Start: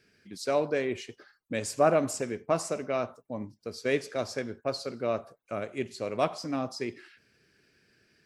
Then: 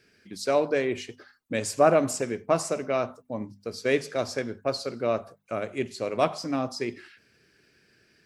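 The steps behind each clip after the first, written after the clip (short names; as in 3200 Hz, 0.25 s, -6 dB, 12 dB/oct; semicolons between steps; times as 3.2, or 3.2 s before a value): notches 50/100/150/200/250 Hz; gain +3.5 dB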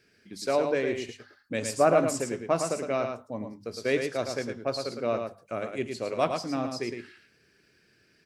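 echo 0.11 s -6 dB; gain -2.5 dB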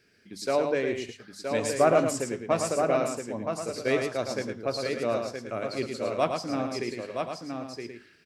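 echo 0.971 s -5.5 dB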